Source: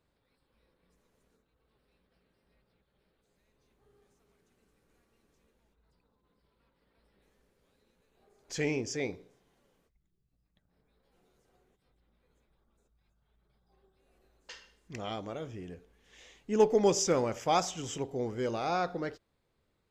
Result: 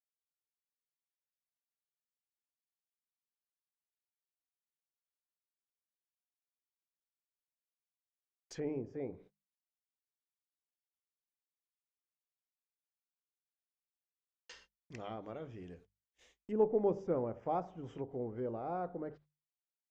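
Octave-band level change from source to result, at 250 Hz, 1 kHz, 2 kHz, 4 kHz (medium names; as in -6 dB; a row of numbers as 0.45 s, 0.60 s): -6.0 dB, -8.5 dB, -17.0 dB, -20.5 dB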